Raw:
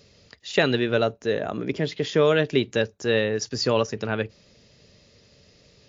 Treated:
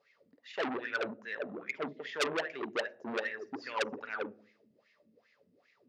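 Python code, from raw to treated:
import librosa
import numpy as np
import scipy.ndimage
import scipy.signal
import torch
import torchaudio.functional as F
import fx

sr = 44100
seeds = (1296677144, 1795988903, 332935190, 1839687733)

y = fx.low_shelf(x, sr, hz=150.0, db=-7.5)
y = fx.doubler(y, sr, ms=50.0, db=-8)
y = fx.wah_lfo(y, sr, hz=2.5, low_hz=210.0, high_hz=2200.0, q=7.8)
y = fx.room_shoebox(y, sr, seeds[0], volume_m3=600.0, walls='furnished', distance_m=0.32)
y = fx.transformer_sat(y, sr, knee_hz=3700.0)
y = y * librosa.db_to_amplitude(3.5)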